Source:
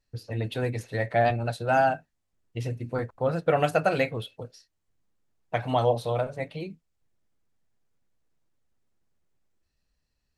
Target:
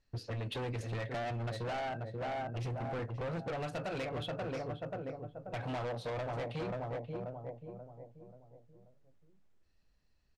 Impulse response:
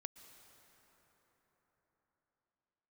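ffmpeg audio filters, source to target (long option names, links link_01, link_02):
-filter_complex "[0:a]asplit=2[link_01][link_02];[link_02]adelay=534,lowpass=frequency=1100:poles=1,volume=-9dB,asplit=2[link_03][link_04];[link_04]adelay=534,lowpass=frequency=1100:poles=1,volume=0.46,asplit=2[link_05][link_06];[link_06]adelay=534,lowpass=frequency=1100:poles=1,volume=0.46,asplit=2[link_07][link_08];[link_08]adelay=534,lowpass=frequency=1100:poles=1,volume=0.46,asplit=2[link_09][link_10];[link_10]adelay=534,lowpass=frequency=1100:poles=1,volume=0.46[link_11];[link_01][link_03][link_05][link_07][link_09][link_11]amix=inputs=6:normalize=0,acompressor=threshold=-31dB:ratio=6,asoftclip=type=hard:threshold=-37dB,adynamicsmooth=sensitivity=7.5:basefreq=6900,volume=2dB"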